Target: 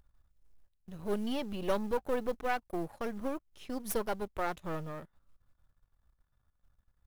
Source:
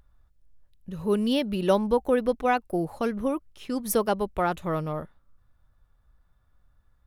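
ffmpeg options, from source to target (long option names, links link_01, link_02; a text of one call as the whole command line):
ffmpeg -i in.wav -af "aeval=exprs='if(lt(val(0),0),0.251*val(0),val(0))':channel_layout=same,acrusher=bits=7:mode=log:mix=0:aa=0.000001,volume=-5.5dB" out.wav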